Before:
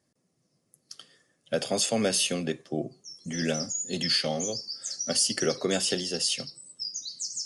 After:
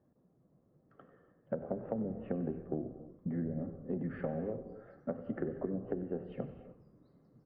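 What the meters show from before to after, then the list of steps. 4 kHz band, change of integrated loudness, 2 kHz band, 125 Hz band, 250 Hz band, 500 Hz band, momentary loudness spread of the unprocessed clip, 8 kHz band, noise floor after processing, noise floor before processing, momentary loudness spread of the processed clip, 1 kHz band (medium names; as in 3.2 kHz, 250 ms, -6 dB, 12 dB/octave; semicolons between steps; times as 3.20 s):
under -40 dB, -11.5 dB, -19.5 dB, -3.5 dB, -5.0 dB, -8.5 dB, 12 LU, under -40 dB, -71 dBFS, -74 dBFS, 7 LU, -11.0 dB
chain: Bessel low-pass 870 Hz, order 6; low-pass that closes with the level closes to 310 Hz, closed at -24.5 dBFS; compression, threshold -39 dBFS, peak gain reduction 14 dB; frequency-shifting echo 94 ms, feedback 45%, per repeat -71 Hz, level -14.5 dB; gated-style reverb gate 330 ms flat, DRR 9.5 dB; trim +5 dB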